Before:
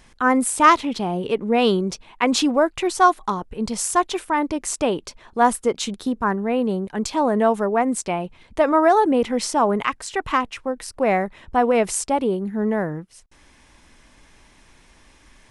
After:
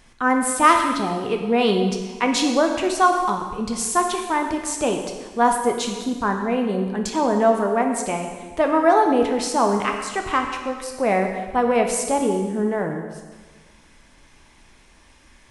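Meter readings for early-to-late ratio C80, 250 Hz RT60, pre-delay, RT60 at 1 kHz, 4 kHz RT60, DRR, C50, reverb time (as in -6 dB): 6.5 dB, 1.5 s, 8 ms, 1.4 s, 1.4 s, 3.0 dB, 5.5 dB, 1.4 s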